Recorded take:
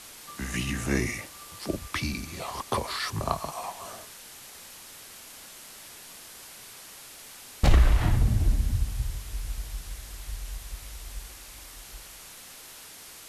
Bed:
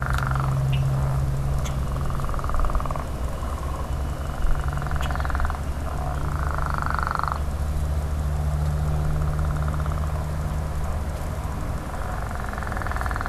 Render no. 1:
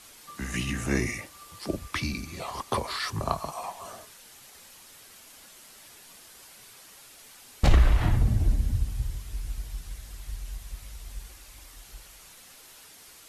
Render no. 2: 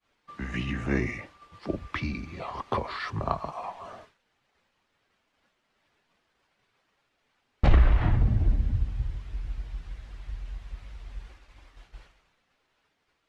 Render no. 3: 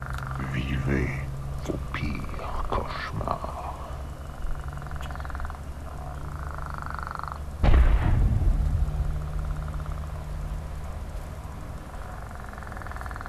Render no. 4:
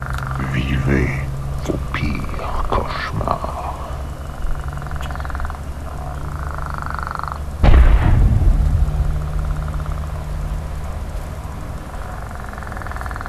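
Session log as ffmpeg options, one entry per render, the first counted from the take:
ffmpeg -i in.wav -af "afftdn=noise_reduction=6:noise_floor=-47" out.wav
ffmpeg -i in.wav -af "lowpass=2600,agate=range=-33dB:threshold=-46dB:ratio=3:detection=peak" out.wav
ffmpeg -i in.wav -i bed.wav -filter_complex "[1:a]volume=-9dB[link_01];[0:a][link_01]amix=inputs=2:normalize=0" out.wav
ffmpeg -i in.wav -af "volume=9dB,alimiter=limit=-1dB:level=0:latency=1" out.wav

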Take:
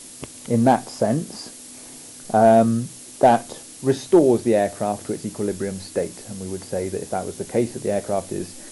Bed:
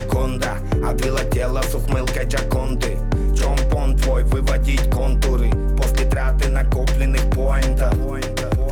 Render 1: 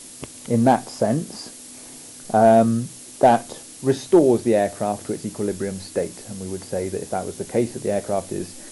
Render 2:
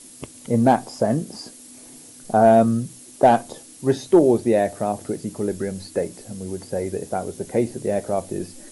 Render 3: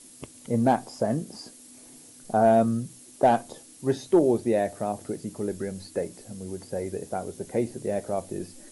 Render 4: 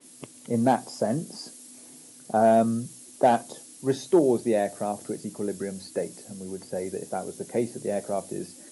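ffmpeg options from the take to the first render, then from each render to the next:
ffmpeg -i in.wav -af anull out.wav
ffmpeg -i in.wav -af "afftdn=noise_reduction=6:noise_floor=-41" out.wav
ffmpeg -i in.wav -af "volume=-5.5dB" out.wav
ffmpeg -i in.wav -af "highpass=frequency=120:width=0.5412,highpass=frequency=120:width=1.3066,adynamicequalizer=threshold=0.00501:dfrequency=3600:dqfactor=0.7:tfrequency=3600:tqfactor=0.7:attack=5:release=100:ratio=0.375:range=2:mode=boostabove:tftype=highshelf" out.wav

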